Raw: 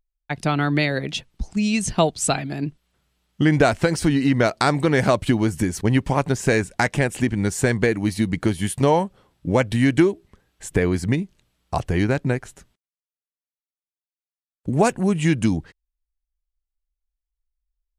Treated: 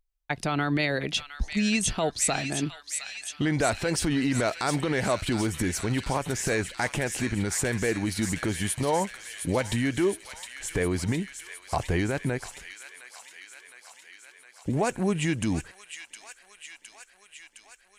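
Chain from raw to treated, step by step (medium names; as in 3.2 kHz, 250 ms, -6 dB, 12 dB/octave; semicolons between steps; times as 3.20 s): peak limiter -14 dBFS, peak gain reduction 11 dB; peaking EQ 160 Hz -5 dB 1.9 oct; feedback echo behind a high-pass 712 ms, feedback 70%, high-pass 1.9 kHz, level -6.5 dB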